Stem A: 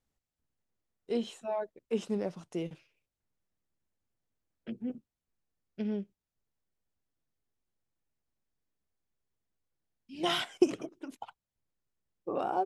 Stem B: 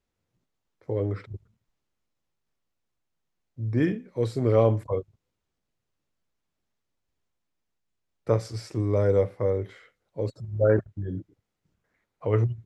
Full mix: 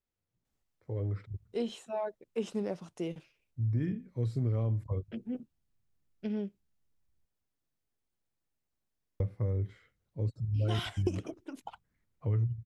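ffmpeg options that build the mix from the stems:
-filter_complex "[0:a]adelay=450,volume=-0.5dB[a];[1:a]asubboost=boost=6:cutoff=210,volume=-10.5dB,asplit=3[b][c][d];[b]atrim=end=7.25,asetpts=PTS-STARTPTS,afade=t=out:st=7.246:d=0.004:c=hsin[e];[c]atrim=start=7.25:end=9.2,asetpts=PTS-STARTPTS,volume=0[f];[d]atrim=start=9.2,asetpts=PTS-STARTPTS,afade=t=in:d=0.004:c=hsin[g];[e][f][g]concat=n=3:v=0:a=1[h];[a][h]amix=inputs=2:normalize=0,acompressor=threshold=-27dB:ratio=6"

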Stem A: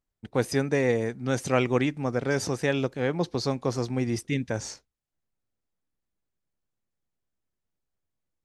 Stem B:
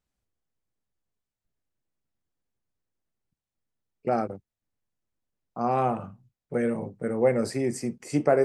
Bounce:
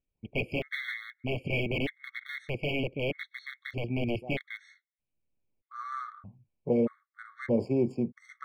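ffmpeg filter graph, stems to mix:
-filter_complex "[0:a]aeval=exprs='(mod(11.2*val(0)+1,2)-1)/11.2':c=same,firequalizer=gain_entry='entry(600,0);entry(1000,-22);entry(2200,11);entry(5800,-24);entry(12000,-17)':delay=0.05:min_phase=1,volume=-0.5dB,asplit=2[a][b];[1:a]adynamicsmooth=sensitivity=5.5:basefreq=2k,adelay=150,volume=1dB[c];[b]apad=whole_len=379227[d];[c][d]sidechaincompress=threshold=-48dB:ratio=10:attack=23:release=622[e];[a][e]amix=inputs=2:normalize=0,highshelf=f=2.5k:g=-9.5,afftfilt=real='re*gt(sin(2*PI*0.8*pts/sr)*(1-2*mod(floor(b*sr/1024/1100),2)),0)':imag='im*gt(sin(2*PI*0.8*pts/sr)*(1-2*mod(floor(b*sr/1024/1100),2)),0)':win_size=1024:overlap=0.75"

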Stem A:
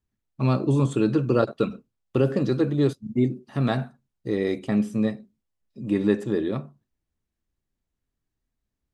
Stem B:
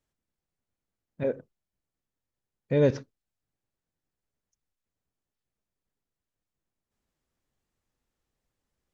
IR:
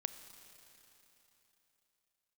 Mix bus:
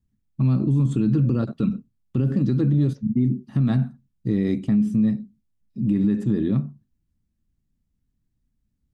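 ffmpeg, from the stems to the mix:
-filter_complex "[0:a]lowshelf=f=320:t=q:w=1.5:g=12.5,alimiter=limit=-9.5dB:level=0:latency=1:release=73,volume=-3.5dB,asplit=2[a][b];[1:a]equalizer=f=1.3k:t=o:w=2.6:g=-13,volume=-7.5dB[c];[b]apad=whole_len=394144[d];[c][d]sidechaincompress=threshold=-25dB:ratio=8:attack=16:release=157[e];[a][e]amix=inputs=2:normalize=0"

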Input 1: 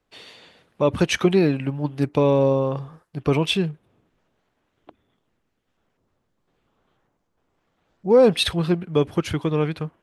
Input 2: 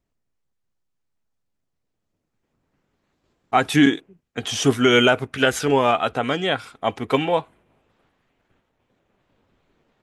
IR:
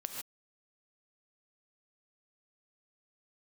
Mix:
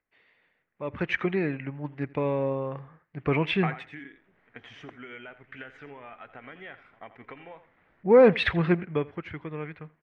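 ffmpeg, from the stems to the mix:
-filter_complex "[0:a]acompressor=mode=upward:threshold=-59dB:ratio=2.5,volume=-2.5dB,afade=t=in:st=0.72:d=0.34:silence=0.237137,afade=t=in:st=3:d=0.69:silence=0.421697,afade=t=out:st=8.79:d=0.29:silence=0.251189,asplit=3[a][b][c];[b]volume=-22.5dB[d];[1:a]acompressor=threshold=-25dB:ratio=12,adelay=100,volume=-6dB,asplit=2[e][f];[f]volume=-11.5dB[g];[c]apad=whole_len=446550[h];[e][h]sidechaingate=range=-33dB:threshold=-43dB:ratio=16:detection=peak[i];[d][g]amix=inputs=2:normalize=0,aecho=0:1:84|168|252:1|0.2|0.04[j];[a][i][j]amix=inputs=3:normalize=0,lowpass=f=2k:t=q:w=3.9"

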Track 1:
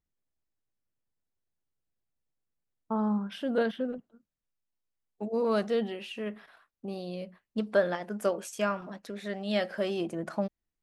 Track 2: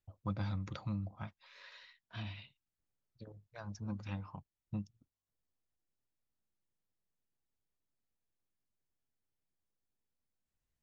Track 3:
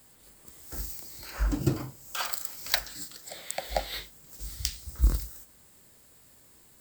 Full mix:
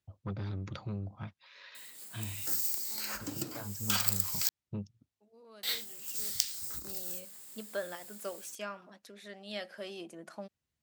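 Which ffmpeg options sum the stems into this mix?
-filter_complex "[0:a]volume=-13dB[a];[1:a]aemphasis=mode=reproduction:type=bsi,asoftclip=type=tanh:threshold=-28dB,equalizer=f=78:w=0.87:g=7,volume=-0.5dB,asplit=2[b][c];[2:a]acompressor=threshold=-30dB:ratio=12,adelay=1750,volume=-3dB,asplit=3[d][e][f];[d]atrim=end=4.49,asetpts=PTS-STARTPTS,afade=t=out:st=4.486:d=0.004:c=hsin[g];[e]atrim=start=4.49:end=5.63,asetpts=PTS-STARTPTS,volume=0[h];[f]atrim=start=5.63,asetpts=PTS-STARTPTS,afade=t=in:d=0.004:c=hsin[i];[g][h][i]concat=n=3:v=0:a=1[j];[c]apad=whole_len=477353[k];[a][k]sidechaincompress=threshold=-58dB:ratio=4:attack=16:release=985[l];[l][b][j]amix=inputs=3:normalize=0,highpass=190,highshelf=f=2.3k:g=11"

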